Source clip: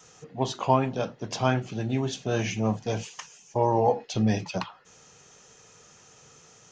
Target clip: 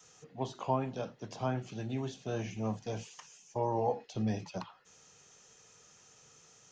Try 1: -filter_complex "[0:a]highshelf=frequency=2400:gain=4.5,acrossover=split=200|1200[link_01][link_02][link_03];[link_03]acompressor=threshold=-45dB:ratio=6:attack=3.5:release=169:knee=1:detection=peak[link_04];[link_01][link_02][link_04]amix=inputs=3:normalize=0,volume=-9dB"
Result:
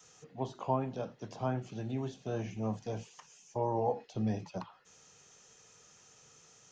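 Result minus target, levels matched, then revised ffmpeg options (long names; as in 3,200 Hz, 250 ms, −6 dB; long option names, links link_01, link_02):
downward compressor: peak gain reduction +5.5 dB
-filter_complex "[0:a]highshelf=frequency=2400:gain=4.5,acrossover=split=200|1200[link_01][link_02][link_03];[link_03]acompressor=threshold=-38.5dB:ratio=6:attack=3.5:release=169:knee=1:detection=peak[link_04];[link_01][link_02][link_04]amix=inputs=3:normalize=0,volume=-9dB"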